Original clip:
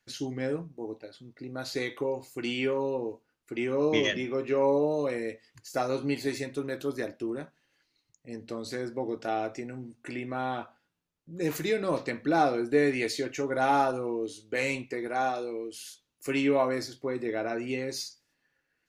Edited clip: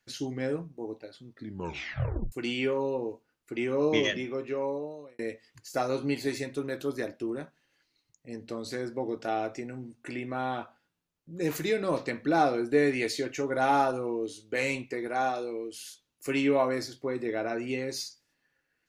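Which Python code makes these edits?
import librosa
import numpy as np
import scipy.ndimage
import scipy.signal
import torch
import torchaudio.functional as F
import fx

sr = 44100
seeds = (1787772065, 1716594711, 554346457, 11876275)

y = fx.edit(x, sr, fx.tape_stop(start_s=1.31, length_s=1.01),
    fx.fade_out_span(start_s=3.99, length_s=1.2), tone=tone)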